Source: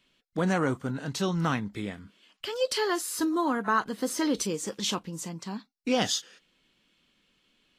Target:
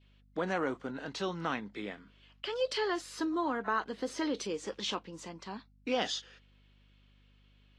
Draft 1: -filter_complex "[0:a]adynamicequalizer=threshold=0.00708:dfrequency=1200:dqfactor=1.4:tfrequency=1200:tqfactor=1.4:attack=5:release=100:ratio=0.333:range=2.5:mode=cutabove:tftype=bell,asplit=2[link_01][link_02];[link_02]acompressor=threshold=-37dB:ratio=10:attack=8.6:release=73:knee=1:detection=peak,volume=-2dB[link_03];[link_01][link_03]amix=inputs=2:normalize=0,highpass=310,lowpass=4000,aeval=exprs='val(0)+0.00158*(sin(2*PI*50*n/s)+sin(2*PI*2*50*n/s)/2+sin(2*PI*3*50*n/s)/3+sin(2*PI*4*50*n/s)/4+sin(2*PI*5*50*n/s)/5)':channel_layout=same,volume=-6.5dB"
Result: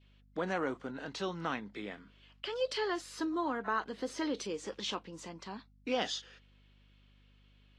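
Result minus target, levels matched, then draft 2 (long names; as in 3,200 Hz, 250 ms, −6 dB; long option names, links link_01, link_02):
downward compressor: peak gain reduction +7 dB
-filter_complex "[0:a]adynamicequalizer=threshold=0.00708:dfrequency=1200:dqfactor=1.4:tfrequency=1200:tqfactor=1.4:attack=5:release=100:ratio=0.333:range=2.5:mode=cutabove:tftype=bell,asplit=2[link_01][link_02];[link_02]acompressor=threshold=-29dB:ratio=10:attack=8.6:release=73:knee=1:detection=peak,volume=-2dB[link_03];[link_01][link_03]amix=inputs=2:normalize=0,highpass=310,lowpass=4000,aeval=exprs='val(0)+0.00158*(sin(2*PI*50*n/s)+sin(2*PI*2*50*n/s)/2+sin(2*PI*3*50*n/s)/3+sin(2*PI*4*50*n/s)/4+sin(2*PI*5*50*n/s)/5)':channel_layout=same,volume=-6.5dB"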